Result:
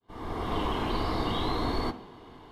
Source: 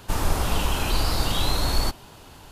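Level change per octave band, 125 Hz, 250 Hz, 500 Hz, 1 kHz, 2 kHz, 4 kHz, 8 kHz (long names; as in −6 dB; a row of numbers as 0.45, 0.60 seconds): −8.0, 0.0, −1.0, −2.0, −7.5, −9.5, −22.5 decibels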